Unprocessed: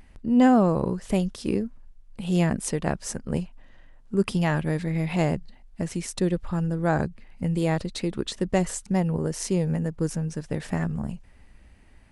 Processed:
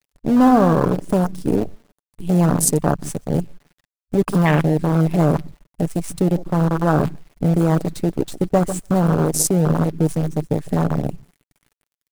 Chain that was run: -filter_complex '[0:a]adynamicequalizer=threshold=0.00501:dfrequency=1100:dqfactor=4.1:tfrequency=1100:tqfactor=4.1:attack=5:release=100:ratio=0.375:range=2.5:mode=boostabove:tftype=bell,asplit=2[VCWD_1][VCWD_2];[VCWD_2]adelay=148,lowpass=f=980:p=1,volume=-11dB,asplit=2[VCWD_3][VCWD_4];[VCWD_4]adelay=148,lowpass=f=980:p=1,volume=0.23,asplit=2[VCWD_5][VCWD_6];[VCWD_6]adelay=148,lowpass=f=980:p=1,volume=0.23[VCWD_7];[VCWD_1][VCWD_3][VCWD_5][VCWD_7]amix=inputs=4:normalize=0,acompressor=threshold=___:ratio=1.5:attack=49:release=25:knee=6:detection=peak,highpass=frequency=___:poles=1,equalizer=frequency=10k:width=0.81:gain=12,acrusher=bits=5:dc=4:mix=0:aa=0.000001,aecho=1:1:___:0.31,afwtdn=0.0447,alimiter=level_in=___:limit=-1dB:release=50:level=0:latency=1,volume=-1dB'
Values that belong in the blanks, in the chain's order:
-31dB, 53, 6.9, 9.5dB